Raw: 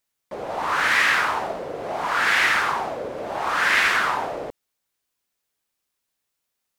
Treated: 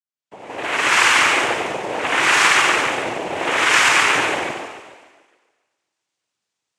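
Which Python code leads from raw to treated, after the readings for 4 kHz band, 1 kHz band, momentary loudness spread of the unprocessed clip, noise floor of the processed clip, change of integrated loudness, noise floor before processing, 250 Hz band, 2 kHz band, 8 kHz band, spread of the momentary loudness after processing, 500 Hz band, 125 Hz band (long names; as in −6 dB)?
+8.5 dB, +4.0 dB, 14 LU, −81 dBFS, +5.5 dB, −80 dBFS, +8.0 dB, +4.5 dB, +12.5 dB, 13 LU, +5.0 dB, +4.5 dB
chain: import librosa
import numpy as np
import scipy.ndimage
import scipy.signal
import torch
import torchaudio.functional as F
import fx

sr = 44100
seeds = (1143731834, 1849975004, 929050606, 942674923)

p1 = fx.fade_in_head(x, sr, length_s=0.95)
p2 = np.where(np.abs(p1) >= 10.0 ** (-29.0 / 20.0), p1, 0.0)
p3 = p1 + F.gain(torch.from_numpy(p2), -12.0).numpy()
p4 = fx.echo_thinned(p3, sr, ms=143, feedback_pct=53, hz=230.0, wet_db=-3.5)
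p5 = fx.noise_vocoder(p4, sr, seeds[0], bands=4)
y = F.gain(torch.from_numpy(p5), 1.5).numpy()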